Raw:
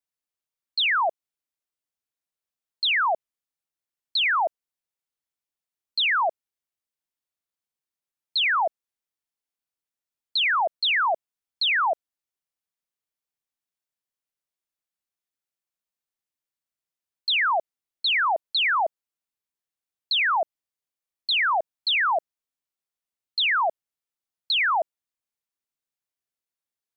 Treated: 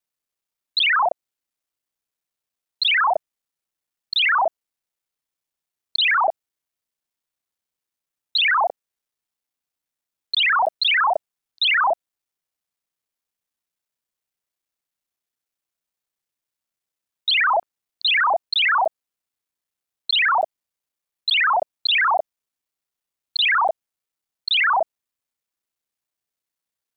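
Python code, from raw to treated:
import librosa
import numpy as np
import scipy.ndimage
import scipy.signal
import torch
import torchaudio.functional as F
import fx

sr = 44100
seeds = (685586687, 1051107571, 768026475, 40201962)

y = fx.local_reverse(x, sr, ms=32.0)
y = y * 10.0 ** (4.5 / 20.0)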